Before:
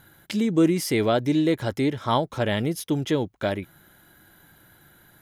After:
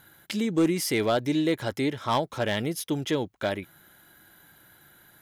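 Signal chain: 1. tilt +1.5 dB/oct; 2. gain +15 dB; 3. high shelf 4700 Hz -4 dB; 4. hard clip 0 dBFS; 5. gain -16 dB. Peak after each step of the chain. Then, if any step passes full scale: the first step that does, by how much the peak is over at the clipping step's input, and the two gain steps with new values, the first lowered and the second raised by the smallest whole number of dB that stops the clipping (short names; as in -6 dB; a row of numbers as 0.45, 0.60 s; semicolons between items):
-8.0, +7.0, +6.5, 0.0, -16.0 dBFS; step 2, 6.5 dB; step 2 +8 dB, step 5 -9 dB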